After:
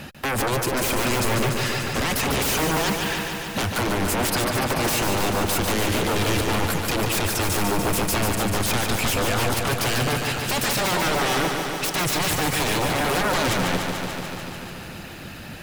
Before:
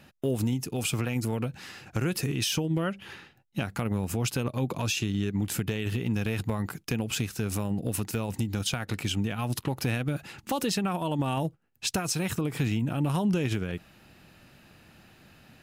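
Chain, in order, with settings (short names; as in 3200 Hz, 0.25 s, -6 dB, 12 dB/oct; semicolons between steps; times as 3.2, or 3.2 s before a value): reverb removal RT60 0.57 s; sine folder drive 19 dB, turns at -15.5 dBFS; lo-fi delay 0.146 s, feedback 80%, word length 8-bit, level -5.5 dB; gain -5.5 dB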